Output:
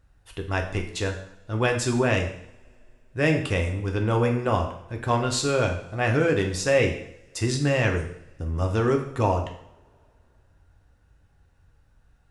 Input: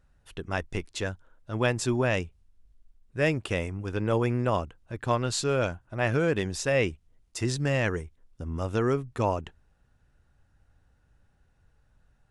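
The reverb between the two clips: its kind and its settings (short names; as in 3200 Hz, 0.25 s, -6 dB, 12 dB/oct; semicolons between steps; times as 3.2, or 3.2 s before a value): two-slope reverb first 0.66 s, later 3 s, from -28 dB, DRR 2.5 dB; gain +2 dB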